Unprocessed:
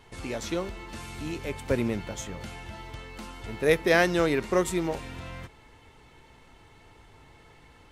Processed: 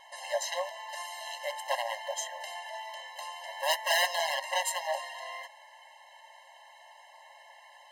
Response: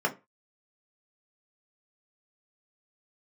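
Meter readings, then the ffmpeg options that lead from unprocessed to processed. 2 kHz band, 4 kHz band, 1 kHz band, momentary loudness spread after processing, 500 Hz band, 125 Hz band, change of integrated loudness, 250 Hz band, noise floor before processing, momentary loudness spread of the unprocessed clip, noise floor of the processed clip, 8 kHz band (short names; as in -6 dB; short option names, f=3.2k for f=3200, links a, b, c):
-2.5 dB, +5.5 dB, +2.5 dB, 17 LU, -8.5 dB, under -40 dB, -5.0 dB, under -40 dB, -55 dBFS, 20 LU, -55 dBFS, +3.5 dB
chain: -af "aeval=exprs='0.0708*(abs(mod(val(0)/0.0708+3,4)-2)-1)':c=same,afftfilt=real='re*eq(mod(floor(b*sr/1024/540),2),1)':imag='im*eq(mod(floor(b*sr/1024/540),2),1)':win_size=1024:overlap=0.75,volume=6dB"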